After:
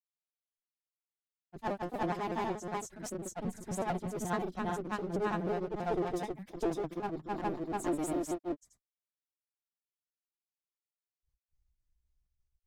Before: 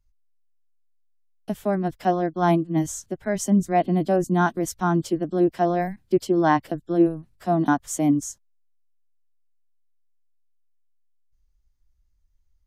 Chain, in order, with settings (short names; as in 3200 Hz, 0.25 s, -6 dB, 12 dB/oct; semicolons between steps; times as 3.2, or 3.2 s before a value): trilling pitch shifter +3 st, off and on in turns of 70 ms; one-sided clip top -28.5 dBFS; grains 0.134 s, grains 23/s, spray 0.507 s, pitch spread up and down by 0 st; gain -6 dB